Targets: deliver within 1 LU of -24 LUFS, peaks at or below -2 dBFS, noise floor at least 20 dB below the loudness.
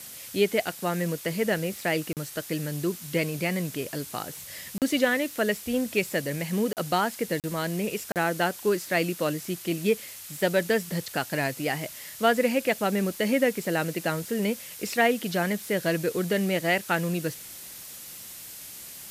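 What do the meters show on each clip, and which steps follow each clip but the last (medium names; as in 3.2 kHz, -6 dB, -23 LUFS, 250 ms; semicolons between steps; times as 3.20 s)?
dropouts 5; longest dropout 38 ms; noise floor -43 dBFS; noise floor target -48 dBFS; loudness -27.5 LUFS; peak level -9.5 dBFS; loudness target -24.0 LUFS
-> interpolate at 2.13/4.78/6.73/7.40/8.12 s, 38 ms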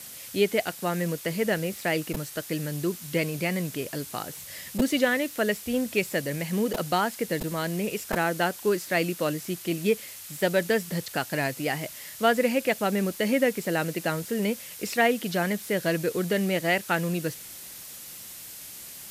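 dropouts 0; noise floor -43 dBFS; noise floor target -48 dBFS
-> noise reduction 6 dB, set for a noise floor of -43 dBFS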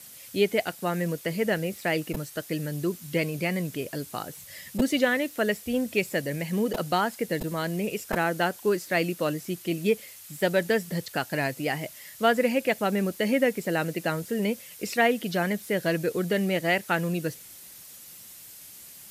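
noise floor -47 dBFS; noise floor target -48 dBFS
-> noise reduction 6 dB, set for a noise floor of -47 dBFS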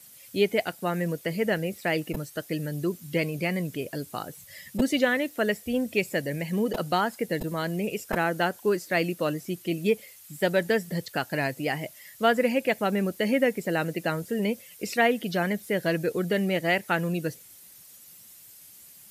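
noise floor -51 dBFS; loudness -27.5 LUFS; peak level -10.0 dBFS; loudness target -24.0 LUFS
-> trim +3.5 dB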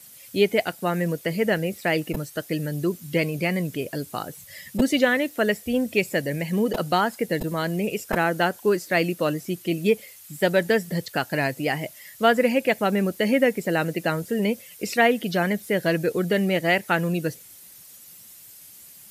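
loudness -24.0 LUFS; peak level -6.5 dBFS; noise floor -47 dBFS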